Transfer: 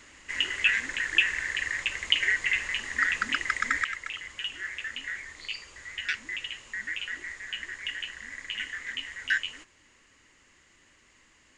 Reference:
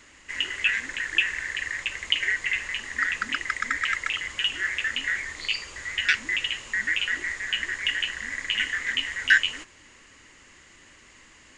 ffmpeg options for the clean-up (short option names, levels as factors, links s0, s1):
-af "asetnsamples=n=441:p=0,asendcmd='3.84 volume volume 8.5dB',volume=1"